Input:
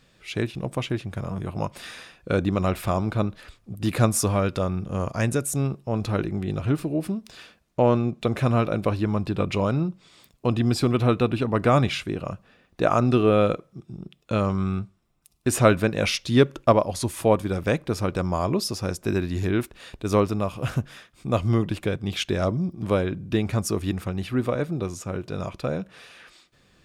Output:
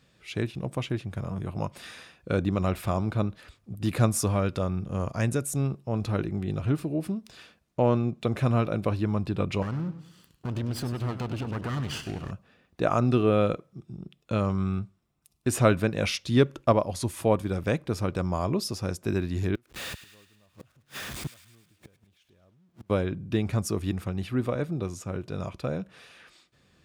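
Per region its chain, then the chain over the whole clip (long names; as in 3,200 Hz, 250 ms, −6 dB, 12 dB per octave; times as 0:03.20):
0:09.62–0:12.31: lower of the sound and its delayed copy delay 0.65 ms + downward compressor 4 to 1, threshold −25 dBFS + feedback echo with a swinging delay time 101 ms, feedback 37%, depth 122 cents, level −12 dB
0:19.55–0:22.90: converter with a step at zero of −28 dBFS + gate with flip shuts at −21 dBFS, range −37 dB + delay with a high-pass on its return 105 ms, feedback 56%, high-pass 1,500 Hz, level −12.5 dB
whole clip: high-pass filter 59 Hz; low-shelf EQ 170 Hz +4.5 dB; level −4.5 dB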